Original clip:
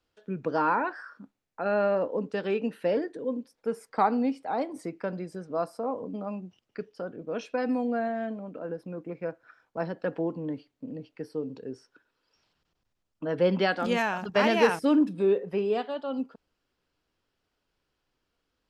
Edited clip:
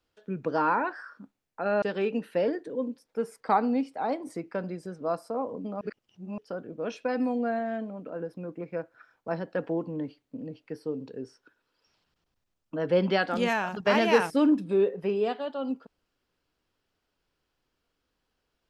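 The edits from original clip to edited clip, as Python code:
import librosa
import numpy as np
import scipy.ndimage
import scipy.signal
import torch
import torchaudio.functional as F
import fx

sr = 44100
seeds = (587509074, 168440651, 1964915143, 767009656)

y = fx.edit(x, sr, fx.cut(start_s=1.82, length_s=0.49),
    fx.reverse_span(start_s=6.3, length_s=0.57), tone=tone)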